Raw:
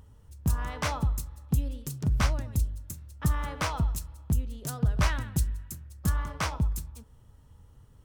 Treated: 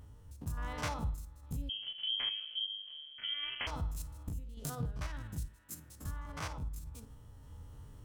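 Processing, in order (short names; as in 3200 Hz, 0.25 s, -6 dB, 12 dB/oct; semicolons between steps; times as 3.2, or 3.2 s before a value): stepped spectrum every 50 ms; 5.46–6.01 HPF 410 Hz -> 130 Hz 12 dB/oct; compressor 2:1, threshold -47 dBFS, peak gain reduction 14 dB; random-step tremolo; FDN reverb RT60 0.31 s, low-frequency decay 1.2×, high-frequency decay 0.85×, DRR 10 dB; 1.69–3.67 inverted band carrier 3200 Hz; gain +5 dB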